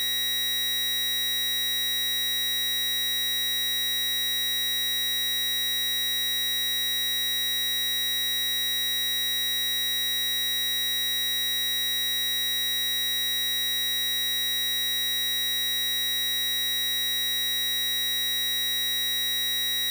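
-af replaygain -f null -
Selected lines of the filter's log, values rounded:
track_gain = +6.2 dB
track_peak = 0.038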